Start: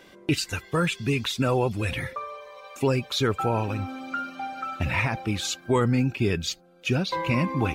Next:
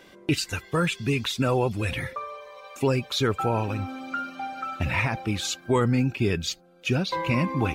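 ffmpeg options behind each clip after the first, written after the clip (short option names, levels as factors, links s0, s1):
-af anull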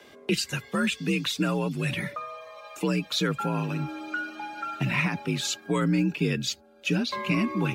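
-filter_complex "[0:a]afreqshift=50,acrossover=split=390|1100[s0][s1][s2];[s1]acompressor=threshold=0.00891:ratio=6[s3];[s0][s3][s2]amix=inputs=3:normalize=0"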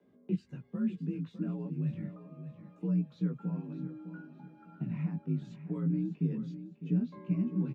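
-af "bandpass=f=180:t=q:w=1.9:csg=0,flanger=delay=16:depth=3.5:speed=0.27,aecho=1:1:605|1210|1815:0.251|0.0754|0.0226"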